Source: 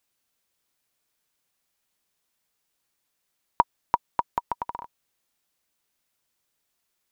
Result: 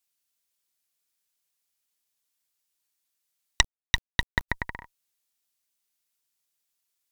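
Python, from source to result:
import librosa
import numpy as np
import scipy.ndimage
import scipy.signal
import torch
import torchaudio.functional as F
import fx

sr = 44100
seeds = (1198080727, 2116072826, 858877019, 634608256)

y = fx.cheby_harmonics(x, sr, harmonics=(3, 4, 6, 8), levels_db=(-6, -34, -27, -7), full_scale_db=-3.0)
y = fx.high_shelf(y, sr, hz=2300.0, db=11.5)
y = fx.quant_dither(y, sr, seeds[0], bits=6, dither='none', at=(3.61, 4.48), fade=0.02)
y = F.gain(torch.from_numpy(y), -6.5).numpy()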